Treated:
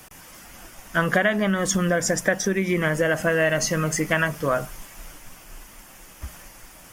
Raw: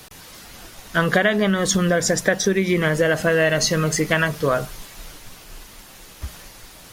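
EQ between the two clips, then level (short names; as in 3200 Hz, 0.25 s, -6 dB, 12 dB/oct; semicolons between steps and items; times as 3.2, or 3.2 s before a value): bell 97 Hz -4 dB 1.4 oct; bell 430 Hz -6.5 dB 0.3 oct; bell 4000 Hz -13 dB 0.43 oct; -1.5 dB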